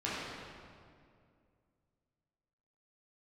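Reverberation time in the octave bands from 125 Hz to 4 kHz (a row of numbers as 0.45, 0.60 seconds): 2.9, 2.7, 2.5, 2.1, 1.8, 1.5 seconds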